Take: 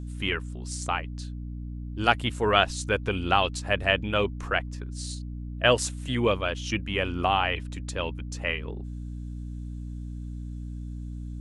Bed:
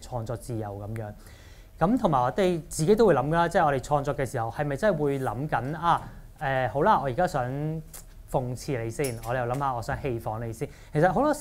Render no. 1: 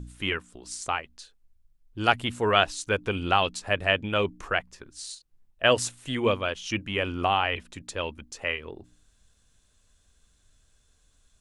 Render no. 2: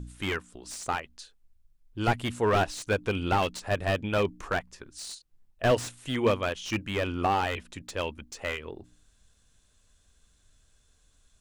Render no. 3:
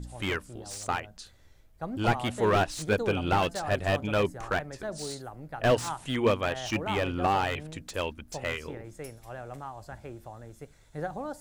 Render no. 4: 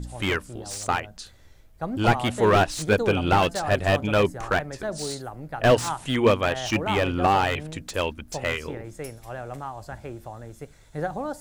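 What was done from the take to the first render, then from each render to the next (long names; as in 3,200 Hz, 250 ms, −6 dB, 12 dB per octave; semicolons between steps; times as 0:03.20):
hum removal 60 Hz, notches 5
slew-rate limiting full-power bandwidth 97 Hz
mix in bed −13 dB
level +5.5 dB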